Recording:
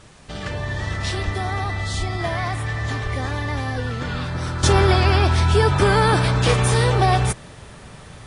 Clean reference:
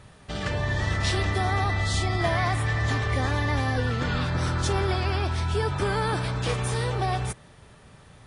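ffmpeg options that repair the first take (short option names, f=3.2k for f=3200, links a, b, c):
-filter_complex "[0:a]asplit=3[a][b][c];[a]afade=t=out:st=1.24:d=0.02[d];[b]highpass=f=140:w=0.5412,highpass=f=140:w=1.3066,afade=t=in:st=1.24:d=0.02,afade=t=out:st=1.36:d=0.02[e];[c]afade=t=in:st=1.36:d=0.02[f];[d][e][f]amix=inputs=3:normalize=0,asplit=3[g][h][i];[g]afade=t=out:st=1.98:d=0.02[j];[h]highpass=f=140:w=0.5412,highpass=f=140:w=1.3066,afade=t=in:st=1.98:d=0.02,afade=t=out:st=2.1:d=0.02[k];[i]afade=t=in:st=2.1:d=0.02[l];[j][k][l]amix=inputs=3:normalize=0,asplit=3[m][n][o];[m]afade=t=out:st=3.03:d=0.02[p];[n]highpass=f=140:w=0.5412,highpass=f=140:w=1.3066,afade=t=in:st=3.03:d=0.02,afade=t=out:st=3.15:d=0.02[q];[o]afade=t=in:st=3.15:d=0.02[r];[p][q][r]amix=inputs=3:normalize=0,agate=range=-21dB:threshold=-33dB,asetnsamples=n=441:p=0,asendcmd='4.63 volume volume -9.5dB',volume=0dB"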